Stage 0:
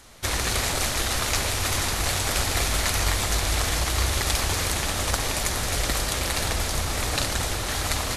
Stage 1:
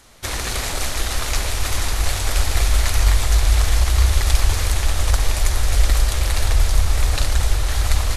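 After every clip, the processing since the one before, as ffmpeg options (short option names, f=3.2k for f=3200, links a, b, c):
-af "asubboost=boost=10:cutoff=57"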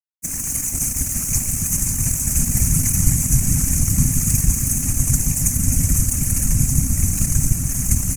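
-af "aeval=exprs='sgn(val(0))*max(abs(val(0))-0.0355,0)':c=same,afftfilt=real='hypot(re,im)*cos(2*PI*random(0))':imag='hypot(re,im)*sin(2*PI*random(1))':win_size=512:overlap=0.75,firequalizer=gain_entry='entry(120,0);entry(260,8);entry(390,-11);entry(900,-13);entry(2500,-6);entry(3600,-26);entry(6300,12)':delay=0.05:min_phase=1,volume=5dB"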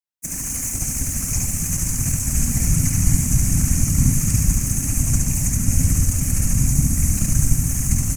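-filter_complex "[0:a]aecho=1:1:71:0.708,acrossover=split=160|640|6600[a][b][c][d];[d]alimiter=limit=-18.5dB:level=0:latency=1:release=285[e];[a][b][c][e]amix=inputs=4:normalize=0,volume=-1dB"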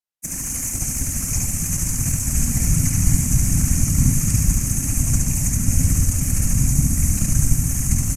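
-af "aresample=32000,aresample=44100"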